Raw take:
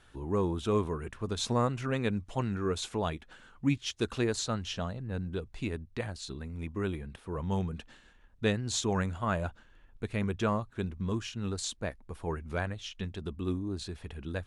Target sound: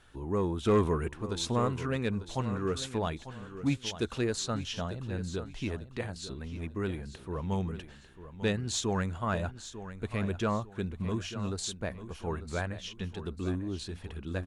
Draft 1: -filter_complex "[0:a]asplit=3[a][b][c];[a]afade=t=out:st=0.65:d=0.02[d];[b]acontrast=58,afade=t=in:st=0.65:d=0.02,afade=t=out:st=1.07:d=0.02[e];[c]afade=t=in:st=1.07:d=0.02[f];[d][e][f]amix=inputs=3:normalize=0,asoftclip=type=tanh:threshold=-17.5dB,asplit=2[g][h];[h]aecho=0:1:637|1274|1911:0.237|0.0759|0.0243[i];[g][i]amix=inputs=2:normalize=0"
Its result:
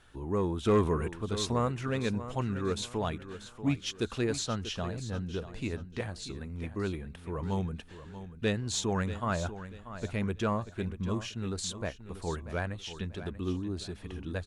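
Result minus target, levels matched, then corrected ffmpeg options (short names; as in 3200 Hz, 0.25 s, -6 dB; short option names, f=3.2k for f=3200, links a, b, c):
echo 0.259 s early
-filter_complex "[0:a]asplit=3[a][b][c];[a]afade=t=out:st=0.65:d=0.02[d];[b]acontrast=58,afade=t=in:st=0.65:d=0.02,afade=t=out:st=1.07:d=0.02[e];[c]afade=t=in:st=1.07:d=0.02[f];[d][e][f]amix=inputs=3:normalize=0,asoftclip=type=tanh:threshold=-17.5dB,asplit=2[g][h];[h]aecho=0:1:896|1792|2688:0.237|0.0759|0.0243[i];[g][i]amix=inputs=2:normalize=0"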